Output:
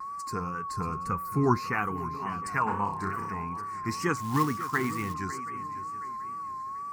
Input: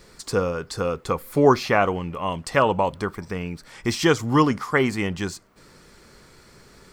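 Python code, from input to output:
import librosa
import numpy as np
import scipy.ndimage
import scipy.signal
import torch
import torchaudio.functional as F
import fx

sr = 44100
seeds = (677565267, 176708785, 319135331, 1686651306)

p1 = fx.spec_quant(x, sr, step_db=15)
p2 = fx.room_flutter(p1, sr, wall_m=5.3, rt60_s=0.45, at=(2.66, 3.28), fade=0.02)
p3 = p2 + 10.0 ** (-29.0 / 20.0) * np.sin(2.0 * np.pi * 1100.0 * np.arange(len(p2)) / sr)
p4 = fx.fixed_phaser(p3, sr, hz=1400.0, stages=4)
p5 = p4 + fx.echo_swing(p4, sr, ms=726, ratio=3, feedback_pct=32, wet_db=-14.0, dry=0)
p6 = fx.wow_flutter(p5, sr, seeds[0], rate_hz=2.1, depth_cents=74.0)
p7 = fx.low_shelf(p6, sr, hz=180.0, db=8.5, at=(0.69, 1.58))
p8 = fx.quant_float(p7, sr, bits=2, at=(4.16, 5.14))
p9 = fx.highpass(p8, sr, hz=110.0, slope=6)
y = p9 * 10.0 ** (-4.5 / 20.0)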